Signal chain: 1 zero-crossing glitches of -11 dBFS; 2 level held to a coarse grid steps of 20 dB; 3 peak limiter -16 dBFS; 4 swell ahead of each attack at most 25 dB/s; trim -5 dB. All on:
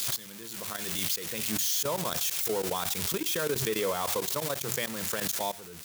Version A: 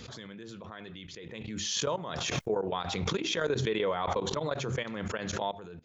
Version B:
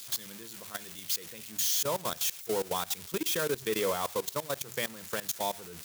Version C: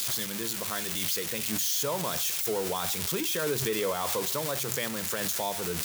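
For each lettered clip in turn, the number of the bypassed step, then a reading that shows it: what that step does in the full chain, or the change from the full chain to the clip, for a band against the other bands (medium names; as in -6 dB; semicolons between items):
1, distortion 0 dB; 4, crest factor change -10.0 dB; 2, crest factor change -2.0 dB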